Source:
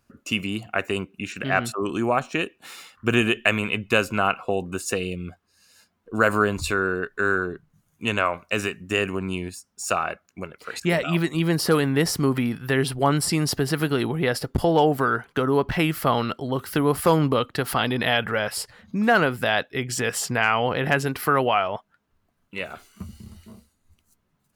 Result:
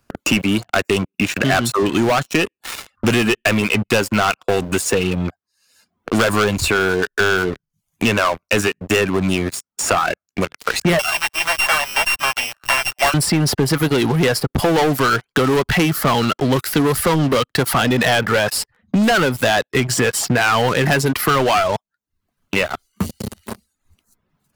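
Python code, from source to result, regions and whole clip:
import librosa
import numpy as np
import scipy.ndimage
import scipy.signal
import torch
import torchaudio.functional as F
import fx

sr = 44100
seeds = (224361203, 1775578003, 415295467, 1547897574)

y = fx.chain(x, sr, fx.sample_sort(block=16),
    fx.steep_highpass(hz=590.0, slope=96), at=(10.99, 13.14))
y = fx.dereverb_blind(y, sr, rt60_s=0.5)
y = fx.leveller(y, sr, passes=5)
y = fx.band_squash(y, sr, depth_pct=70)
y = F.gain(torch.from_numpy(y), -7.0).numpy()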